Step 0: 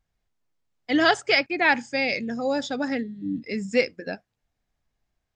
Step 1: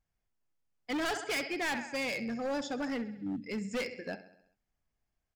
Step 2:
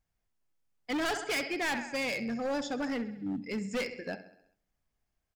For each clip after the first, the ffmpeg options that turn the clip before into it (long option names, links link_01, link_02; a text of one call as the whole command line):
ffmpeg -i in.wav -af "equalizer=frequency=3800:width=7.7:gain=-8.5,aecho=1:1:66|132|198|264|330|396:0.178|0.101|0.0578|0.0329|0.0188|0.0107,volume=24dB,asoftclip=hard,volume=-24dB,volume=-6.5dB" out.wav
ffmpeg -i in.wav -filter_complex "[0:a]asplit=2[link_01][link_02];[link_02]adelay=87,lowpass=frequency=1000:poles=1,volume=-19dB,asplit=2[link_03][link_04];[link_04]adelay=87,lowpass=frequency=1000:poles=1,volume=0.52,asplit=2[link_05][link_06];[link_06]adelay=87,lowpass=frequency=1000:poles=1,volume=0.52,asplit=2[link_07][link_08];[link_08]adelay=87,lowpass=frequency=1000:poles=1,volume=0.52[link_09];[link_01][link_03][link_05][link_07][link_09]amix=inputs=5:normalize=0,volume=1.5dB" out.wav